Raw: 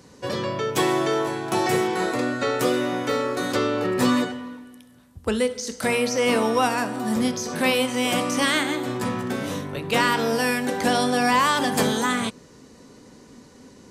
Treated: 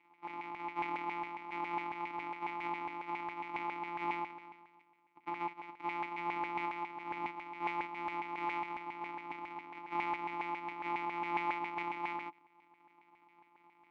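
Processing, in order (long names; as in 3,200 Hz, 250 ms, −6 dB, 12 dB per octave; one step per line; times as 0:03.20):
samples sorted by size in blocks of 256 samples
formant filter u
auto-filter band-pass saw down 7.3 Hz 960–2,100 Hz
level +8.5 dB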